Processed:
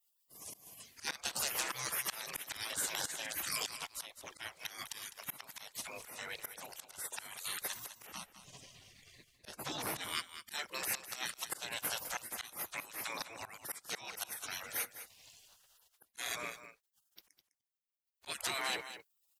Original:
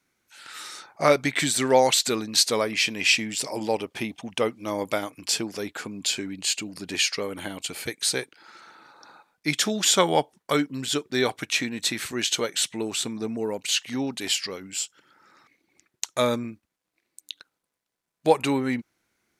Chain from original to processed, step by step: spectral gate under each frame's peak -25 dB weak; 8.05–9.97 s: tilt EQ -2 dB/octave; slow attack 477 ms; compression 6:1, threshold -47 dBFS, peak gain reduction 9 dB; delay 205 ms -12.5 dB; transformer saturation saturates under 2.4 kHz; trim +15 dB

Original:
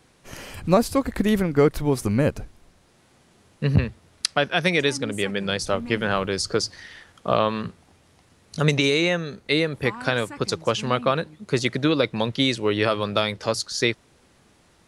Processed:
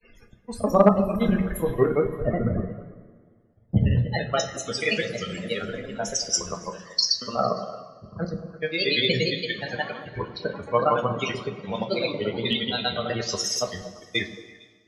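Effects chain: slices played last to first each 85 ms, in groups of 6; granulator 96 ms, grains 17 per s, spray 100 ms, pitch spread up and down by 3 st; treble shelf 6.4 kHz +11 dB; loudest bins only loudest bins 32; two-slope reverb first 0.25 s, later 3 s, from -18 dB, DRR 3 dB; in parallel at -2 dB: compression 12:1, threshold -26 dBFS, peak gain reduction 17 dB; on the sum: dynamic bell 290 Hz, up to -5 dB, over -34 dBFS, Q 1.5; hard clipper -6.5 dBFS, distortion -30 dB; on a send: repeats whose band climbs or falls 114 ms, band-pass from 200 Hz, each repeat 1.4 oct, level -4.5 dB; on the sum: three bands expanded up and down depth 70%; trim -4.5 dB

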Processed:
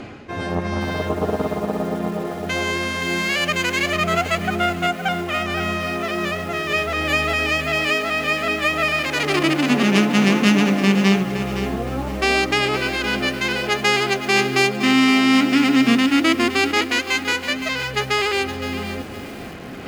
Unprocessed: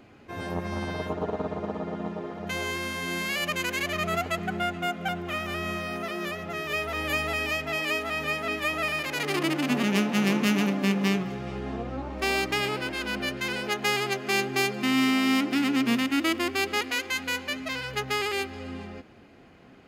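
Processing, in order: low-pass 8.2 kHz 12 dB/octave; band-stop 930 Hz, Q 18; reverse; upward compressor, threshold -31 dBFS; reverse; bit-crushed delay 515 ms, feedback 35%, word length 7-bit, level -9.5 dB; trim +8 dB

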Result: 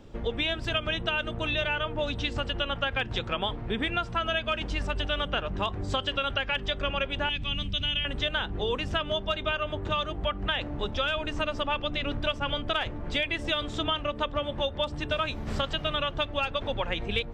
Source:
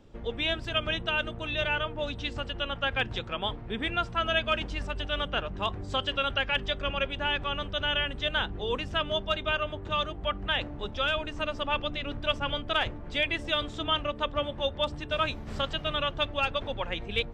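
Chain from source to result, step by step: 7.29–8.05 s: high-order bell 800 Hz -15 dB 2.6 oct; compression, threshold -31 dBFS, peak gain reduction 9.5 dB; trim +6 dB

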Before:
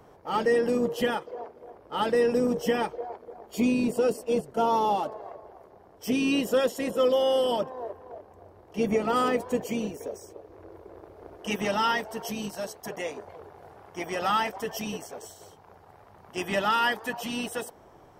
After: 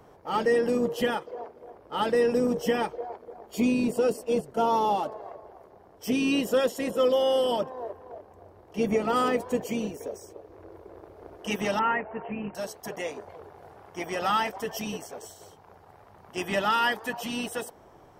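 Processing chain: 11.79–12.55 s: steep low-pass 2.7 kHz 96 dB/octave

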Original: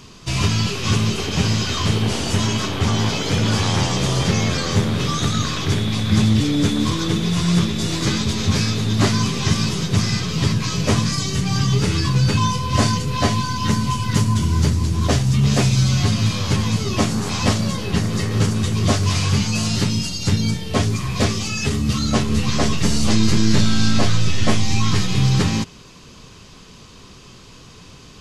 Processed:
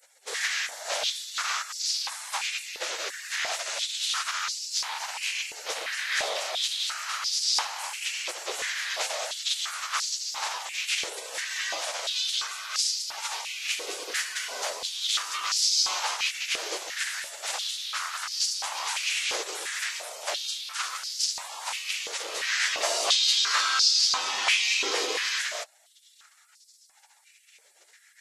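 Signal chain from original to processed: spectral gate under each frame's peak -25 dB weak; step-sequenced high-pass 2.9 Hz 440–4900 Hz; trim -2 dB

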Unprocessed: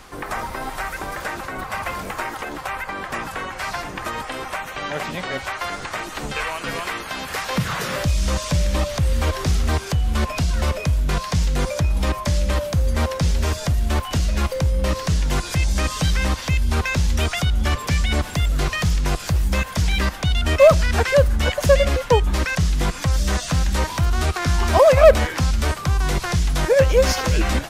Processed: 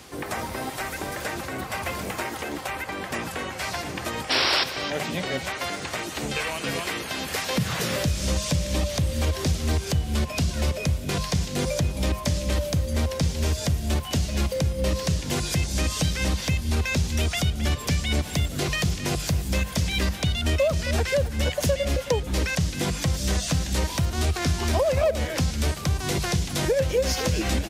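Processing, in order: high-pass 63 Hz 24 dB/octave; peaking EQ 1.2 kHz -9 dB 1.5 oct; hum notches 50/100/150/200 Hz; compression 6:1, threshold -22 dBFS, peak gain reduction 12 dB; painted sound noise, 4.30–4.64 s, 300–5700 Hz -24 dBFS; delay 267 ms -13 dB; trim +2 dB

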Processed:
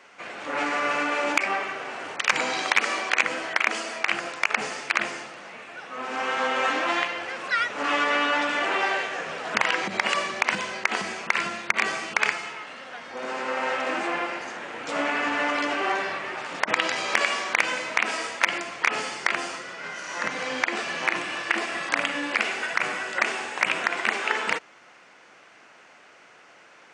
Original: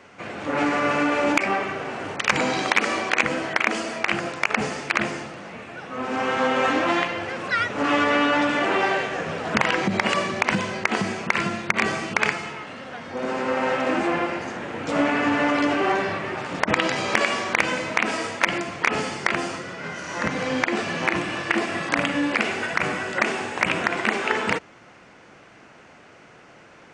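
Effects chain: high-pass 870 Hz 6 dB/octave

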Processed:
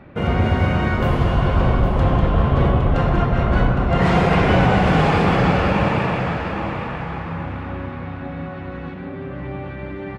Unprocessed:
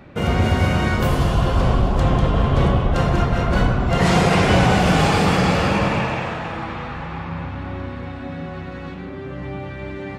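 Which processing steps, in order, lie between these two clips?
tone controls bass 0 dB, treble -15 dB; on a send: feedback delay 812 ms, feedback 28%, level -8.5 dB

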